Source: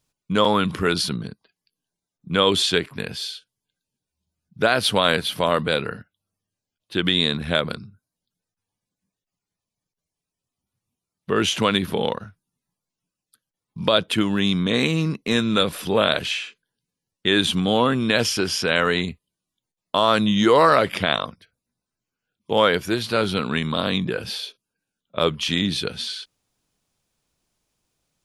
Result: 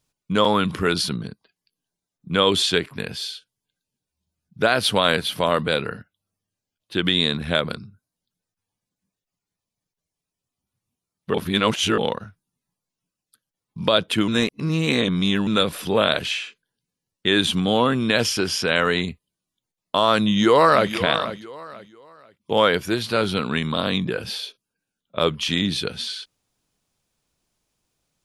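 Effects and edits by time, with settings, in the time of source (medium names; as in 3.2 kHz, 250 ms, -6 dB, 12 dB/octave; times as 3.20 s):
11.34–11.98 s: reverse
14.28–15.47 s: reverse
20.25–20.90 s: echo throw 490 ms, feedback 30%, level -12.5 dB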